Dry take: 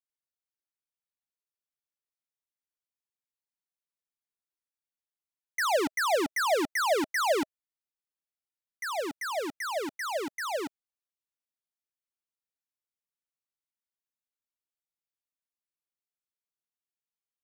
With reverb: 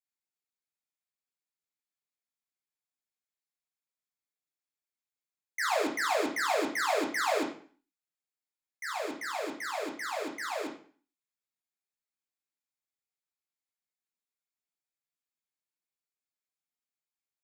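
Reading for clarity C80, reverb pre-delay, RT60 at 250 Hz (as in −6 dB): 12.0 dB, 3 ms, 0.50 s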